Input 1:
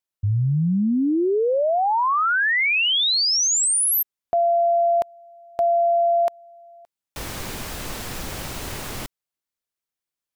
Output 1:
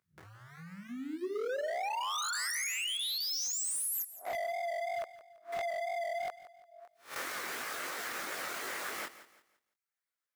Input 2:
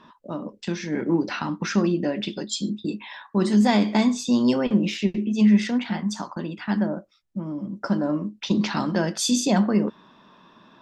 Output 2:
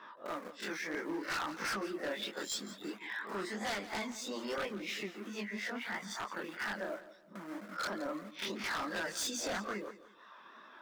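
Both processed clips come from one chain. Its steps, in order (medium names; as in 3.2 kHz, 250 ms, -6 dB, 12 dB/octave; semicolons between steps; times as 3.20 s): reverse spectral sustain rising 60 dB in 0.30 s; in parallel at -4 dB: small samples zeroed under -29.5 dBFS; on the sum: reverb removal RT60 0.7 s; chorus 3 Hz, delay 18.5 ms, depth 7.6 ms; compression 2:1, threshold -41 dBFS; Chebyshev high-pass 450 Hz, order 2; high-order bell 1.6 kHz +8 dB 1.1 oct; wavefolder -30.5 dBFS; bit-crushed delay 170 ms, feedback 35%, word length 12-bit, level -15 dB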